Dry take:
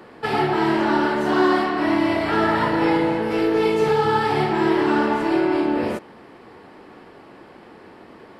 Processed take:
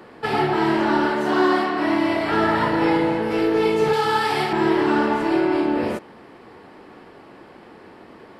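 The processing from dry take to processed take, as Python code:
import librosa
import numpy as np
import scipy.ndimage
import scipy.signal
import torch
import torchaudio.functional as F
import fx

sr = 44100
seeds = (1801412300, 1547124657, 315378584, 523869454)

y = fx.highpass(x, sr, hz=140.0, slope=6, at=(1.1, 2.31))
y = fx.tilt_eq(y, sr, slope=2.5, at=(3.93, 4.53))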